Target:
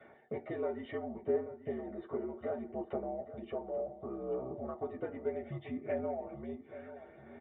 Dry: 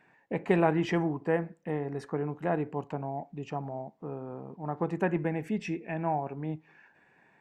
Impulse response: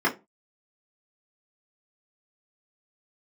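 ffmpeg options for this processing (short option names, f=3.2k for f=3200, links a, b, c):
-filter_complex "[0:a]equalizer=f=2.7k:t=o:w=0.3:g=-14.5,bandreject=f=1.7k:w=5.4,acrossover=split=110[a][b];[a]acrusher=bits=3:mix=0:aa=0.5[c];[b]acompressor=threshold=-45dB:ratio=4[d];[c][d]amix=inputs=2:normalize=0,aresample=8000,aresample=44100,aphaser=in_gain=1:out_gain=1:delay=2:decay=0.35:speed=0.68:type=sinusoidal,asplit=2[e][f];[f]adelay=834,lowpass=f=2k:p=1,volume=-12.5dB,asplit=2[g][h];[h]adelay=834,lowpass=f=2k:p=1,volume=0.4,asplit=2[i][j];[j]adelay=834,lowpass=f=2k:p=1,volume=0.4,asplit=2[k][l];[l]adelay=834,lowpass=f=2k:p=1,volume=0.4[m];[e][g][i][k][m]amix=inputs=5:normalize=0[n];[1:a]atrim=start_sample=2205,asetrate=79380,aresample=44100[o];[n][o]afir=irnorm=-1:irlink=0,afreqshift=-74,volume=-4dB"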